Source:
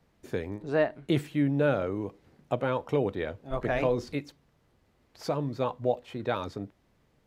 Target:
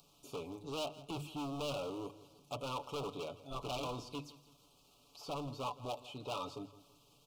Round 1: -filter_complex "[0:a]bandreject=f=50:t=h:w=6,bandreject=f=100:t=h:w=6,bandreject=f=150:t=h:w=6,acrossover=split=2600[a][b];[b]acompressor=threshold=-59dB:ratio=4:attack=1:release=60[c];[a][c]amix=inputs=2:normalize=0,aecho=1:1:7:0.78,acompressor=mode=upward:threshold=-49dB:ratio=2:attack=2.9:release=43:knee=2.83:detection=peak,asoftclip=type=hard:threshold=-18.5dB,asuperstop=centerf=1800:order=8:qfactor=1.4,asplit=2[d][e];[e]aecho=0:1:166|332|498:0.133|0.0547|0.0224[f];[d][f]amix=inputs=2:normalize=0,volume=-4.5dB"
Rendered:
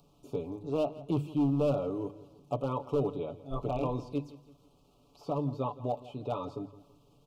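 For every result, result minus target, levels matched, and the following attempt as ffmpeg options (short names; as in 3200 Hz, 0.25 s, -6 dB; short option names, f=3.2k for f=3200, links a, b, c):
hard clip: distortion -9 dB; 1000 Hz band -4.5 dB
-filter_complex "[0:a]bandreject=f=50:t=h:w=6,bandreject=f=100:t=h:w=6,bandreject=f=150:t=h:w=6,acrossover=split=2600[a][b];[b]acompressor=threshold=-59dB:ratio=4:attack=1:release=60[c];[a][c]amix=inputs=2:normalize=0,aecho=1:1:7:0.78,acompressor=mode=upward:threshold=-49dB:ratio=2:attack=2.9:release=43:knee=2.83:detection=peak,asoftclip=type=hard:threshold=-28dB,asuperstop=centerf=1800:order=8:qfactor=1.4,asplit=2[d][e];[e]aecho=0:1:166|332|498:0.133|0.0547|0.0224[f];[d][f]amix=inputs=2:normalize=0,volume=-4.5dB"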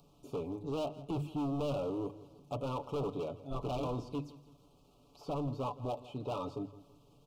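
1000 Hz band -3.0 dB
-filter_complex "[0:a]bandreject=f=50:t=h:w=6,bandreject=f=100:t=h:w=6,bandreject=f=150:t=h:w=6,acrossover=split=2600[a][b];[b]acompressor=threshold=-59dB:ratio=4:attack=1:release=60[c];[a][c]amix=inputs=2:normalize=0,aecho=1:1:7:0.78,acompressor=mode=upward:threshold=-49dB:ratio=2:attack=2.9:release=43:knee=2.83:detection=peak,asoftclip=type=hard:threshold=-28dB,asuperstop=centerf=1800:order=8:qfactor=1.4,tiltshelf=f=1.1k:g=-8,asplit=2[d][e];[e]aecho=0:1:166|332|498:0.133|0.0547|0.0224[f];[d][f]amix=inputs=2:normalize=0,volume=-4.5dB"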